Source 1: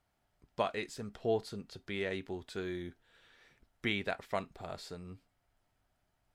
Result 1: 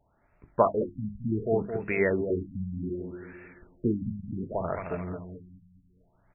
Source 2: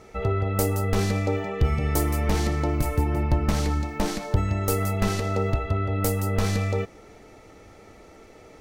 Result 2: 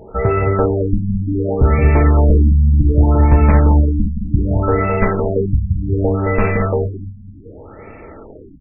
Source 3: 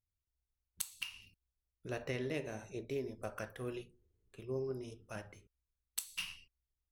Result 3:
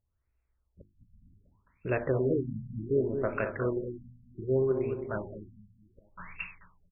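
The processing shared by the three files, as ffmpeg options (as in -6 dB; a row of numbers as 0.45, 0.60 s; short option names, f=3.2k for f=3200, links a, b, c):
-filter_complex "[0:a]bandreject=f=750:w=12,aeval=exprs='0.376*sin(PI/2*1.58*val(0)/0.376)':c=same,bandreject=f=50:t=h:w=6,bandreject=f=100:t=h:w=6,bandreject=f=150:t=h:w=6,bandreject=f=200:t=h:w=6,bandreject=f=250:t=h:w=6,bandreject=f=300:t=h:w=6,bandreject=f=350:t=h:w=6,asplit=2[a][b];[b]aecho=0:1:217|434|651|868|1085:0.447|0.183|0.0751|0.0308|0.0126[c];[a][c]amix=inputs=2:normalize=0,afftfilt=real='re*lt(b*sr/1024,240*pow(2800/240,0.5+0.5*sin(2*PI*0.66*pts/sr)))':imag='im*lt(b*sr/1024,240*pow(2800/240,0.5+0.5*sin(2*PI*0.66*pts/sr)))':win_size=1024:overlap=0.75,volume=4dB"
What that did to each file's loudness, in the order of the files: +8.0, +10.0, +11.0 LU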